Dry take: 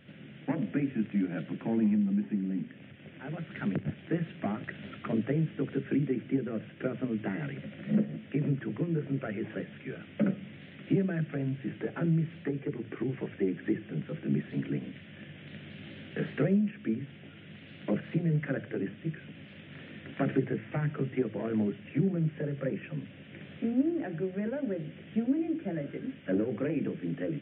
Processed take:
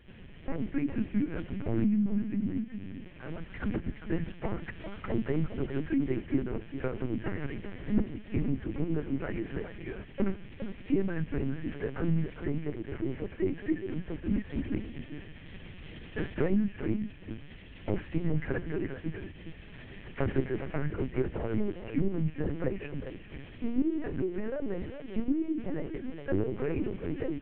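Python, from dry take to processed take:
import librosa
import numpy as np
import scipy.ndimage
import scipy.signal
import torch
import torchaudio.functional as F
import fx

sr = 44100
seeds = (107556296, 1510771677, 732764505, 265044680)

p1 = x + fx.echo_single(x, sr, ms=408, db=-9.0, dry=0)
y = fx.lpc_vocoder(p1, sr, seeds[0], excitation='pitch_kept', order=8)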